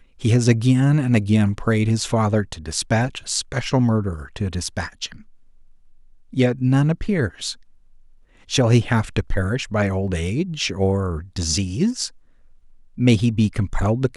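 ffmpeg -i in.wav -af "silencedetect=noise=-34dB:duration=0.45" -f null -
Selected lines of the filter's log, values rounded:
silence_start: 5.21
silence_end: 6.33 | silence_duration: 1.12
silence_start: 7.54
silence_end: 8.49 | silence_duration: 0.96
silence_start: 12.08
silence_end: 12.98 | silence_duration: 0.89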